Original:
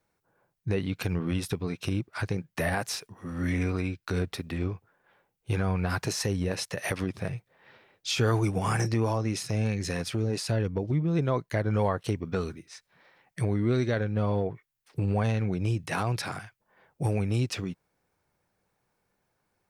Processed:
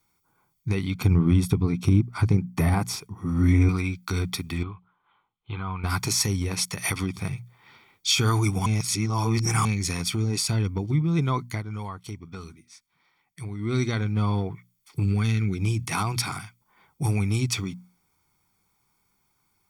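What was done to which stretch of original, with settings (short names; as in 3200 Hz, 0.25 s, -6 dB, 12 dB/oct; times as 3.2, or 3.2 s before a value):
0.94–3.69 tilt shelf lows +7.5 dB, about 1100 Hz
4.63–5.84 rippled Chebyshev low-pass 4200 Hz, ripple 9 dB
8.66–9.65 reverse
11.46–13.77 dip -10.5 dB, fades 0.19 s
15.03–15.58 band shelf 770 Hz -11.5 dB 1.2 oct
whole clip: high shelf 3500 Hz +9.5 dB; notches 60/120/180/240 Hz; comb 0.9 ms, depth 76%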